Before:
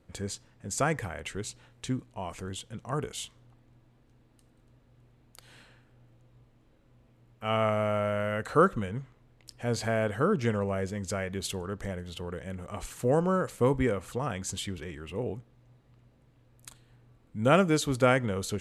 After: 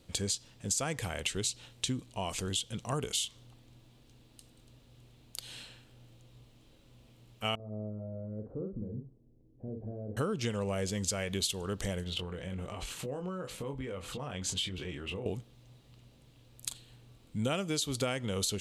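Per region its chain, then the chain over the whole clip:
7.55–10.17 s: compression 3:1, threshold -33 dBFS + four-pole ladder low-pass 510 Hz, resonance 25% + doubling 47 ms -4 dB
12.04–15.26 s: tone controls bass -1 dB, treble -13 dB + compression, threshold -39 dBFS + doubling 22 ms -6 dB
whole clip: resonant high shelf 2.4 kHz +9 dB, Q 1.5; compression 10:1, threshold -31 dBFS; trim +2 dB

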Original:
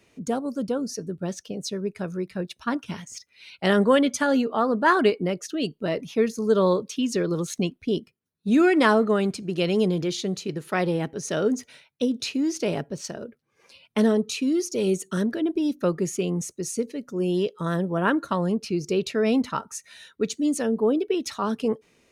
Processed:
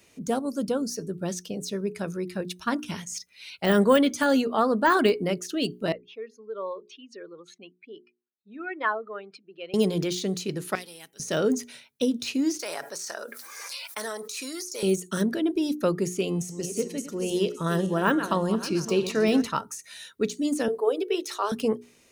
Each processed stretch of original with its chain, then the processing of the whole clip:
5.92–9.74 s: spectral contrast enhancement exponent 1.6 + high-pass 1 kHz + distance through air 400 m
10.75–11.20 s: pre-emphasis filter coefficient 0.97 + transformer saturation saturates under 1.8 kHz
12.59–14.83 s: high-pass 1.1 kHz + peaking EQ 2.9 kHz -12 dB 0.7 oct + level flattener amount 70%
16.17–19.47 s: backward echo that repeats 283 ms, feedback 49%, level -11 dB + de-hum 235.7 Hz, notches 39
20.68–21.52 s: steep high-pass 340 Hz 48 dB/octave + hum notches 60/120/180/240/300/360/420/480 Hz
whole clip: hum notches 60/120/180/240/300/360/420 Hz; de-esser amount 85%; treble shelf 5.1 kHz +11 dB

